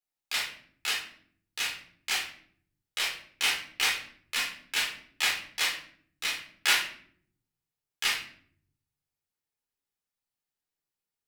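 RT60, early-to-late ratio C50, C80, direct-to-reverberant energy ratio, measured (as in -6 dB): 0.60 s, 5.5 dB, 11.0 dB, -4.0 dB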